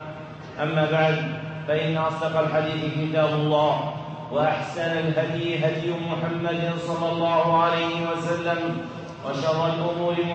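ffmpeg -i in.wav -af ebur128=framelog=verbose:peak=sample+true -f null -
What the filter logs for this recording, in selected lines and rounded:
Integrated loudness:
  I:         -24.2 LUFS
  Threshold: -34.3 LUFS
Loudness range:
  LRA:         1.5 LU
  Threshold: -44.1 LUFS
  LRA low:   -25.1 LUFS
  LRA high:  -23.6 LUFS
Sample peak:
  Peak:       -8.6 dBFS
True peak:
  Peak:       -8.6 dBFS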